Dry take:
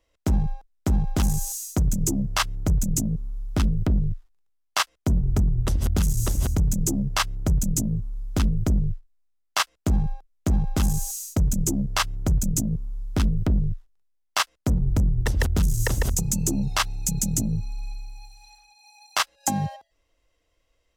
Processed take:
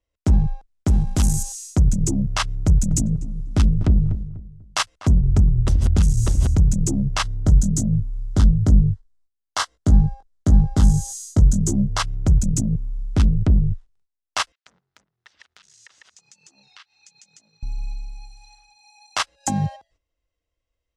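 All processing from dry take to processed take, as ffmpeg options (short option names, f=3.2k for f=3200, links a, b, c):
-filter_complex "[0:a]asettb=1/sr,asplit=3[a][b][c];[a]atrim=end=0.884[d];[b]atrim=start=0.88:end=1.43,asetpts=PTS-STARTPTS,afade=t=in:d=0.004:c=qsin,afade=t=out:st=0.546:d=0.004:c=qsin,aemphasis=mode=production:type=50fm,tremolo=f=190:d=0.261,acrusher=bits=9:mode=log:mix=0:aa=0.000001[e];[c]atrim=start=1.426[f];[d][e]acrossfade=d=0.004:c1=hsin:c2=qsin[g];[g][f]acrossfade=d=0.004:c1=qsin:c2=hsin,asettb=1/sr,asplit=3[h][i][j];[h]atrim=end=2.494[k];[i]atrim=start=2.49:end=5.14,asetpts=PTS-STARTPTS,afade=t=in:d=0.004:c=qsin,afade=t=out:st=2.646:d=0.004:c=qsin,highshelf=f=5.7k:g=4.5,asplit=2[l][m];[m]adelay=246,lowpass=f=1.3k:p=1,volume=-13dB,asplit=2[n][o];[o]adelay=246,lowpass=f=1.3k:p=1,volume=0.3,asplit=2[p][q];[q]adelay=246,lowpass=f=1.3k:p=1,volume=0.3[r];[l][n][p][r]amix=inputs=4:normalize=0,atrim=end_sample=116865[s];[j]atrim=start=5.136[t];[k][s]acrossfade=d=0.004:c1=hsin:c2=qsin[u];[u][t]acrossfade=d=0.004:c1=qsin:c2=hsin,asettb=1/sr,asplit=3[v][w][x];[v]atrim=end=7.234[y];[w]atrim=start=7.23:end=12.01,asetpts=PTS-STARTPTS,afade=t=in:d=0.004:c=qsin,afade=t=out:st=4.776:d=0.004:c=qsin,equalizer=f=2.5k:t=o:w=0.31:g=-13,asplit=2[z][aa];[aa]adelay=20,volume=-6.5dB[ab];[z][ab]amix=inputs=2:normalize=0,atrim=end_sample=210798[ac];[x]atrim=start=12.006[ad];[y][ac]acrossfade=d=0.004:c1=hsin:c2=qsin[ae];[ae][ad]acrossfade=d=0.004:c1=qsin:c2=hsin,asettb=1/sr,asplit=3[af][ag][ah];[af]atrim=end=14.524[ai];[ag]atrim=start=14.52:end=17.63,asetpts=PTS-STARTPTS,afade=t=in:d=0.004:c=qsin,afade=t=out:st=3.106:d=0.004:c=qsin,asuperpass=centerf=2600:order=4:qfactor=0.76,acompressor=threshold=-51dB:ratio=3:attack=3.2:release=140:knee=1:detection=peak[aj];[ah]atrim=start=17.626[ak];[ai][aj]acrossfade=d=0.004:c1=hsin:c2=qsin[al];[al][ak]acrossfade=d=0.004:c1=qsin:c2=hsin,lowpass=f=9.5k:w=0.5412,lowpass=f=9.5k:w=1.3066,agate=range=-13dB:threshold=-60dB:ratio=16:detection=peak,equalizer=f=75:w=0.45:g=7"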